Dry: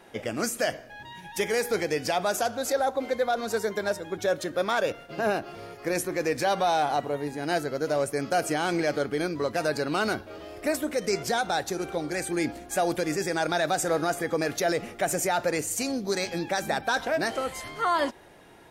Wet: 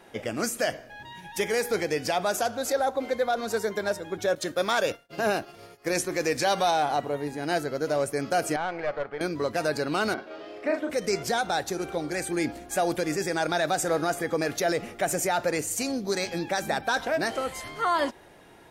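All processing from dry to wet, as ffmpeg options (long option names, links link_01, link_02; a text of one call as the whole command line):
ffmpeg -i in.wav -filter_complex "[0:a]asettb=1/sr,asplit=3[link_01][link_02][link_03];[link_01]atrim=end=4.354[link_04];[link_02]atrim=start=4.35:end=6.71,asetpts=PTS-STARTPTS,afade=type=in:duration=0.004:curve=qsin,afade=type=out:start_time=2.356:duration=0.004:curve=qsin,agate=range=-33dB:threshold=-36dB:ratio=3:release=100:detection=peak,highshelf=frequency=3800:gain=9,acrossover=split=8400[link_05][link_06];[link_06]acompressor=threshold=-45dB:ratio=4:attack=1:release=60[link_07];[link_05][link_07]amix=inputs=2:normalize=0[link_08];[link_03]atrim=start=6.706[link_09];[link_04][link_08]acrossfade=duration=0.004:curve1=hsin:curve2=qsin[link_10];[link_10][link_09]acrossfade=duration=0.004:curve1=qsin:curve2=hsin,asettb=1/sr,asplit=3[link_11][link_12][link_13];[link_11]atrim=end=8.564[link_14];[link_12]atrim=start=8.56:end=9.21,asetpts=PTS-STARTPTS,afade=type=in:duration=0.004:curve=qsin,afade=type=out:start_time=0.646:duration=0.004:curve=qsin,lowpass=2000,lowshelf=frequency=420:width_type=q:width=1.5:gain=-11,aeval=exprs='(tanh(12.6*val(0)+0.45)-tanh(0.45))/12.6':channel_layout=same[link_15];[link_13]atrim=start=9.206[link_16];[link_14][link_15]acrossfade=duration=0.004:curve1=hsin:curve2=qsin[link_17];[link_17][link_16]acrossfade=duration=0.004:curve1=qsin:curve2=hsin,asettb=1/sr,asplit=3[link_18][link_19][link_20];[link_18]atrim=end=10.144[link_21];[link_19]atrim=start=10.14:end=10.9,asetpts=PTS-STARTPTS,afade=type=in:duration=0.004:curve=qsin,afade=type=out:start_time=0.756:duration=0.004:curve=qsin,acrossover=split=2800[link_22][link_23];[link_23]acompressor=threshold=-50dB:ratio=4:attack=1:release=60[link_24];[link_22][link_24]amix=inputs=2:normalize=0,acrossover=split=210 5800:gain=0.0708 1 0.141[link_25][link_26][link_27];[link_25][link_26][link_27]amix=inputs=3:normalize=0,asplit=2[link_28][link_29];[link_29]adelay=38,volume=-5dB[link_30];[link_28][link_30]amix=inputs=2:normalize=0,atrim=end_sample=33516[link_31];[link_20]atrim=start=10.896[link_32];[link_21][link_31]acrossfade=duration=0.004:curve1=hsin:curve2=qsin[link_33];[link_33][link_32]acrossfade=duration=0.004:curve1=qsin:curve2=hsin" out.wav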